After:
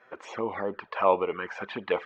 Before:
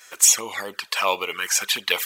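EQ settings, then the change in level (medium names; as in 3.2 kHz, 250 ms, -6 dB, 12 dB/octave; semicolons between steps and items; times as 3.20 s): Bessel low-pass 690 Hz, order 2; distance through air 150 m; +6.0 dB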